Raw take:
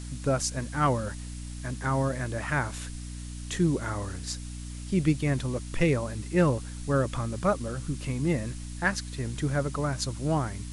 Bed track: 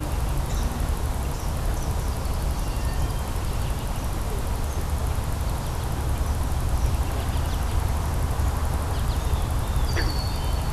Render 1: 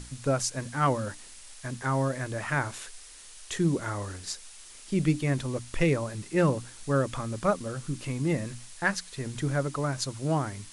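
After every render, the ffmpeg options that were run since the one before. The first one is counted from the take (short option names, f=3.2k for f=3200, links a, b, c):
-af "bandreject=f=60:t=h:w=6,bandreject=f=120:t=h:w=6,bandreject=f=180:t=h:w=6,bandreject=f=240:t=h:w=6,bandreject=f=300:t=h:w=6"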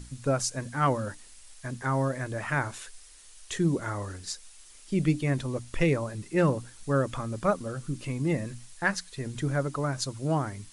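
-af "afftdn=nr=6:nf=-48"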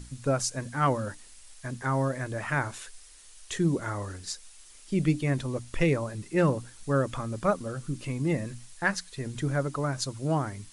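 -af anull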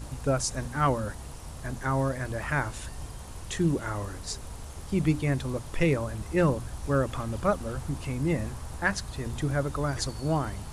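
-filter_complex "[1:a]volume=-14.5dB[a];[0:a][a]amix=inputs=2:normalize=0"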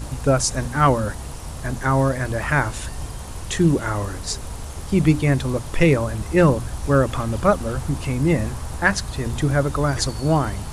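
-af "volume=8.5dB"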